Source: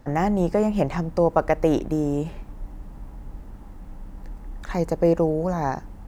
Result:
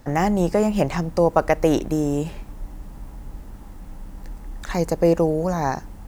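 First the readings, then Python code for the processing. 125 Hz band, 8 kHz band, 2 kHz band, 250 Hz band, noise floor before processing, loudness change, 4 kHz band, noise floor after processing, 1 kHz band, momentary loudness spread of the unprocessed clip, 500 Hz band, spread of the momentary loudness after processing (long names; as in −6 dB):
+1.5 dB, can't be measured, +4.0 dB, +1.5 dB, −42 dBFS, +2.0 dB, +6.5 dB, −40 dBFS, +2.0 dB, 21 LU, +1.5 dB, 21 LU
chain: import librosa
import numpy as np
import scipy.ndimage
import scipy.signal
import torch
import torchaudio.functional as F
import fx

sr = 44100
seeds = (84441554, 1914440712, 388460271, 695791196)

y = fx.high_shelf(x, sr, hz=3000.0, db=8.5)
y = y * librosa.db_to_amplitude(1.5)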